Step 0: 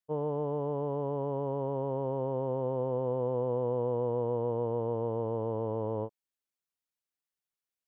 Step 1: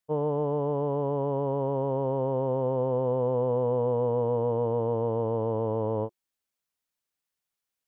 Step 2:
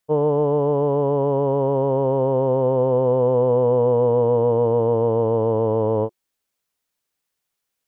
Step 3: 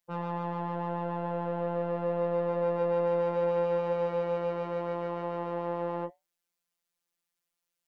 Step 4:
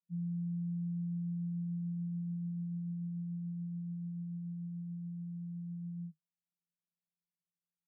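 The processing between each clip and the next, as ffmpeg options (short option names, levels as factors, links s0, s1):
-af "bandreject=f=360:w=12,volume=1.78"
-af "equalizer=f=430:w=2:g=2.5,volume=2.24"
-filter_complex "[0:a]acrossover=split=130|650[s0][s1][s2];[s1]asoftclip=type=tanh:threshold=0.0398[s3];[s0][s3][s2]amix=inputs=3:normalize=0,afftfilt=real='hypot(re,im)*cos(PI*b)':imag='0':win_size=1024:overlap=0.75,flanger=delay=4.4:depth=2.4:regen=-81:speed=0.75:shape=triangular,volume=1.19"
-af "asuperpass=centerf=180:order=8:qfactor=3.3,volume=1.19"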